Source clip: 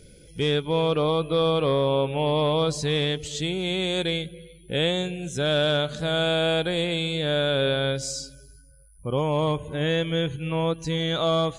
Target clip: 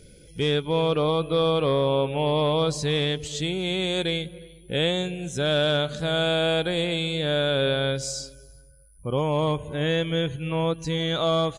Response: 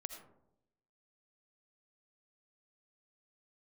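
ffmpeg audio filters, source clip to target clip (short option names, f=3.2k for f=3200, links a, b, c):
-filter_complex "[0:a]asplit=2[a][b];[b]adelay=362,lowpass=f=1.2k:p=1,volume=-23dB,asplit=2[c][d];[d]adelay=362,lowpass=f=1.2k:p=1,volume=0.2[e];[a][c][e]amix=inputs=3:normalize=0"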